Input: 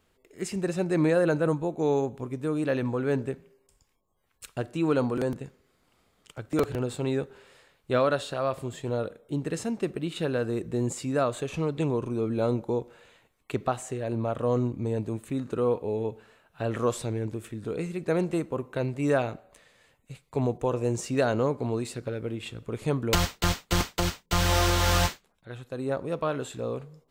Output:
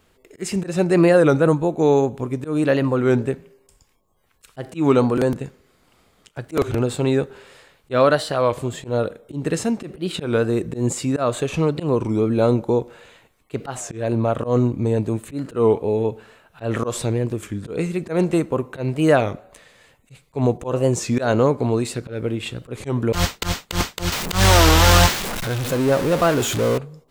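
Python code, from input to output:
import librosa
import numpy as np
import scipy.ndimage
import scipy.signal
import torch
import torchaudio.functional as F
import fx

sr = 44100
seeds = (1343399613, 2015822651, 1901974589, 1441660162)

y = fx.zero_step(x, sr, step_db=-29.5, at=(24.12, 26.78))
y = fx.auto_swell(y, sr, attack_ms=124.0)
y = fx.record_warp(y, sr, rpm=33.33, depth_cents=160.0)
y = F.gain(torch.from_numpy(y), 9.0).numpy()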